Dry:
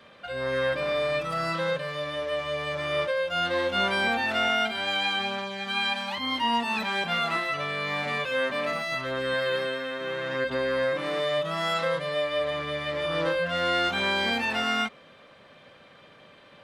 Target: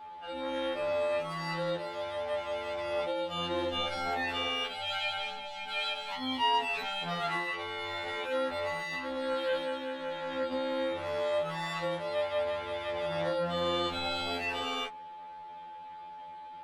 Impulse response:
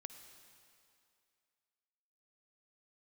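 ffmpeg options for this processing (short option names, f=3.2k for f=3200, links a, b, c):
-af "tremolo=f=200:d=0.919,aeval=exprs='val(0)+0.00447*sin(2*PI*860*n/s)':c=same,afftfilt=real='re*2*eq(mod(b,4),0)':imag='im*2*eq(mod(b,4),0)':win_size=2048:overlap=0.75"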